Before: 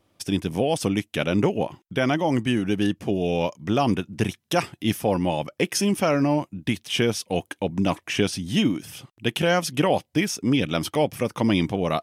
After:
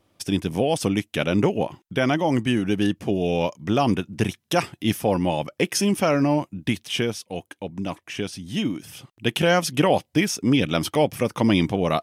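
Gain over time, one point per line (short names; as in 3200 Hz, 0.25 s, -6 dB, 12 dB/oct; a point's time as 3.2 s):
6.84 s +1 dB
7.27 s -6.5 dB
8.3 s -6.5 dB
9.35 s +2 dB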